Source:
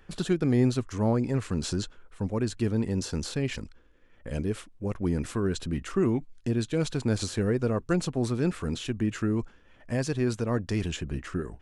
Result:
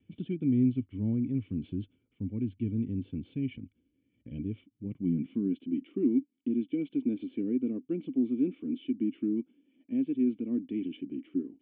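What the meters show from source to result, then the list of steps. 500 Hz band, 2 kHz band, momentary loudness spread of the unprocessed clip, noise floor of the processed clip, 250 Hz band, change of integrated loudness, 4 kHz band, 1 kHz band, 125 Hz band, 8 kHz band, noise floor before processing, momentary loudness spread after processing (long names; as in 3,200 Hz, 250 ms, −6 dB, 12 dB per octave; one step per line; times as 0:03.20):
−9.5 dB, below −15 dB, 7 LU, −76 dBFS, −0.5 dB, −3.0 dB, below −15 dB, below −25 dB, −8.0 dB, below −40 dB, −57 dBFS, 11 LU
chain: high-pass filter sweep 98 Hz → 280 Hz, 0:04.67–0:05.68
formant resonators in series i
pitch vibrato 0.73 Hz 13 cents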